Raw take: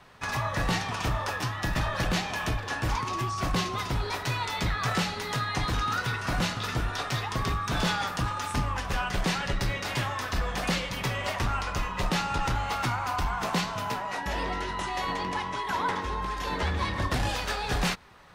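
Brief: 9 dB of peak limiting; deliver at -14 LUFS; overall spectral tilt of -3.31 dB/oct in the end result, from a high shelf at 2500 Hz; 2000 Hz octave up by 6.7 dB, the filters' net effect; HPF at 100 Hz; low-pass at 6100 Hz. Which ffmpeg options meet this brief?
-af "highpass=100,lowpass=6.1k,equalizer=f=2k:t=o:g=6,highshelf=f=2.5k:g=5.5,volume=15dB,alimiter=limit=-5dB:level=0:latency=1"

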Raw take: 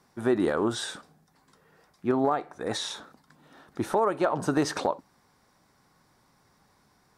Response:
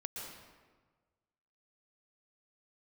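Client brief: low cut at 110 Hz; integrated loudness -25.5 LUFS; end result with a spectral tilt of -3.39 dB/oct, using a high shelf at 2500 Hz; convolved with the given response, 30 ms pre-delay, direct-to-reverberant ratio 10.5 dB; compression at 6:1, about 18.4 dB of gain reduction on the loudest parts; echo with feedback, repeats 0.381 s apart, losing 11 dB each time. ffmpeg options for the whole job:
-filter_complex "[0:a]highpass=110,highshelf=f=2.5k:g=5,acompressor=threshold=-40dB:ratio=6,aecho=1:1:381|762|1143:0.282|0.0789|0.0221,asplit=2[a][b];[1:a]atrim=start_sample=2205,adelay=30[c];[b][c]afir=irnorm=-1:irlink=0,volume=-10dB[d];[a][d]amix=inputs=2:normalize=0,volume=18.5dB"

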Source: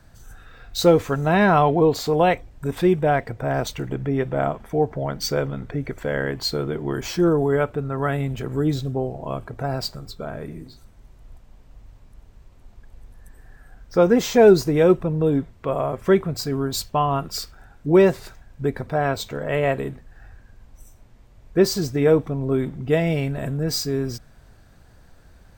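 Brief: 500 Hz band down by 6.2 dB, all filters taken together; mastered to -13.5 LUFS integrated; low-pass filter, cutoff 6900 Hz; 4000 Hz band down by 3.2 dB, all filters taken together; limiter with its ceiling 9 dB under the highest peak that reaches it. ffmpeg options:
-af "lowpass=6.9k,equalizer=f=500:t=o:g=-8,equalizer=f=4k:t=o:g=-3,volume=14dB,alimiter=limit=-2.5dB:level=0:latency=1"

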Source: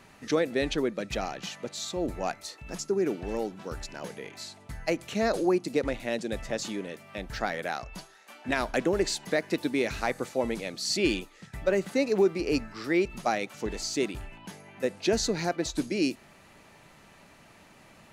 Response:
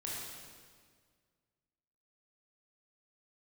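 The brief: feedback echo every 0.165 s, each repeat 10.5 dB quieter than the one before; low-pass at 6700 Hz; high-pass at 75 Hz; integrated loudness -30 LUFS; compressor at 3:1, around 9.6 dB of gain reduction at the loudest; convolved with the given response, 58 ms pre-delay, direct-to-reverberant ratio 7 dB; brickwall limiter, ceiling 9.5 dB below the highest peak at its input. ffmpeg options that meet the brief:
-filter_complex "[0:a]highpass=75,lowpass=6.7k,acompressor=threshold=-33dB:ratio=3,alimiter=level_in=3.5dB:limit=-24dB:level=0:latency=1,volume=-3.5dB,aecho=1:1:165|330|495:0.299|0.0896|0.0269,asplit=2[a][b];[1:a]atrim=start_sample=2205,adelay=58[c];[b][c]afir=irnorm=-1:irlink=0,volume=-8dB[d];[a][d]amix=inputs=2:normalize=0,volume=7.5dB"

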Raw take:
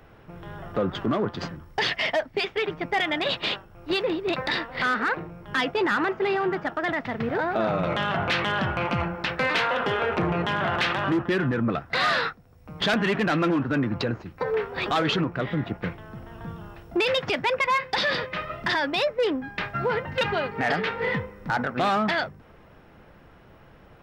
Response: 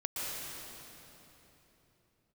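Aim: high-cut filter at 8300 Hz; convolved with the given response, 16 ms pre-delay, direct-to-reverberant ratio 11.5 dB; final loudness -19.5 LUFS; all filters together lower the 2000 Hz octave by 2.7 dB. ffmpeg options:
-filter_complex "[0:a]lowpass=8.3k,equalizer=f=2k:t=o:g=-3.5,asplit=2[a][b];[1:a]atrim=start_sample=2205,adelay=16[c];[b][c]afir=irnorm=-1:irlink=0,volume=-16dB[d];[a][d]amix=inputs=2:normalize=0,volume=7dB"

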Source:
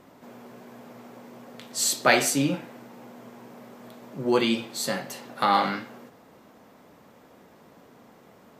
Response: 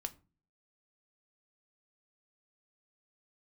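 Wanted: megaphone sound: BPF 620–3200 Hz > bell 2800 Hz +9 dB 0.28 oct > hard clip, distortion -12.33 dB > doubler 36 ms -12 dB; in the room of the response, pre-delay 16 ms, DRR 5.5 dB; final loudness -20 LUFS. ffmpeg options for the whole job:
-filter_complex "[0:a]asplit=2[a][b];[1:a]atrim=start_sample=2205,adelay=16[c];[b][c]afir=irnorm=-1:irlink=0,volume=-3.5dB[d];[a][d]amix=inputs=2:normalize=0,highpass=620,lowpass=3.2k,equalizer=f=2.8k:t=o:w=0.28:g=9,asoftclip=type=hard:threshold=-16dB,asplit=2[e][f];[f]adelay=36,volume=-12dB[g];[e][g]amix=inputs=2:normalize=0,volume=7dB"

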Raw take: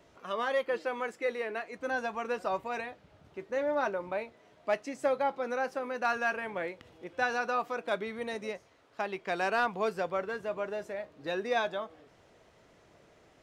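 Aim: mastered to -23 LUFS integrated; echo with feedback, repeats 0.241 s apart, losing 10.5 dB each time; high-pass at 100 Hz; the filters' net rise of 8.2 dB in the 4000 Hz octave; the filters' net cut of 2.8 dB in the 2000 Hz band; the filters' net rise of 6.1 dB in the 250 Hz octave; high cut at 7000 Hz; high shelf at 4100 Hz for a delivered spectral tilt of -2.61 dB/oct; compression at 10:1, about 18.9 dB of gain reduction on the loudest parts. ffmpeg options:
-af "highpass=100,lowpass=7k,equalizer=f=250:t=o:g=7.5,equalizer=f=2k:t=o:g=-7.5,equalizer=f=4k:t=o:g=8,highshelf=f=4.1k:g=8,acompressor=threshold=-43dB:ratio=10,aecho=1:1:241|482|723:0.299|0.0896|0.0269,volume=24dB"

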